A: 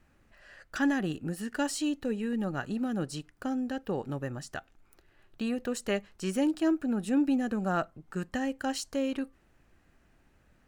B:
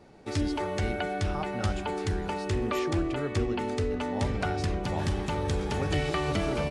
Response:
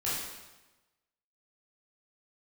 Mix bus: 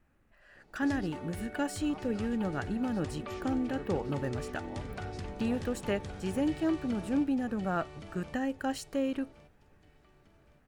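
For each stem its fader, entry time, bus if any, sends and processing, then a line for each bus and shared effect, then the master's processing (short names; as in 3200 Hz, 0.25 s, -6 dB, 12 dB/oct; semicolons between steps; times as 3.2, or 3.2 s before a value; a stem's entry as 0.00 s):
-1.5 dB, 0.00 s, no send, no echo send, bell 5400 Hz -7 dB 1.7 oct
-4.5 dB, 0.55 s, no send, echo send -15.5 dB, auto duck -9 dB, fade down 1.55 s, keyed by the first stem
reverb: off
echo: feedback echo 1.118 s, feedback 36%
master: vocal rider within 3 dB 2 s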